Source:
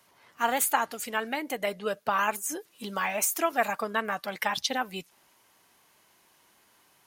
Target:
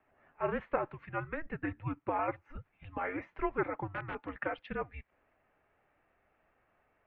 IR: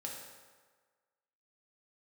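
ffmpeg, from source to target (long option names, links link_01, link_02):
-filter_complex "[0:a]asplit=3[link_01][link_02][link_03];[link_01]afade=type=out:start_time=3.87:duration=0.02[link_04];[link_02]aeval=exprs='(mod(11.9*val(0)+1,2)-1)/11.9':channel_layout=same,afade=type=in:start_time=3.87:duration=0.02,afade=type=out:start_time=4.28:duration=0.02[link_05];[link_03]afade=type=in:start_time=4.28:duration=0.02[link_06];[link_04][link_05][link_06]amix=inputs=3:normalize=0,highpass=frequency=340:width_type=q:width=0.5412,highpass=frequency=340:width_type=q:width=1.307,lowpass=frequency=2600:width_type=q:width=0.5176,lowpass=frequency=2600:width_type=q:width=0.7071,lowpass=frequency=2600:width_type=q:width=1.932,afreqshift=-310,lowshelf=frequency=73:gain=5.5,volume=-6.5dB"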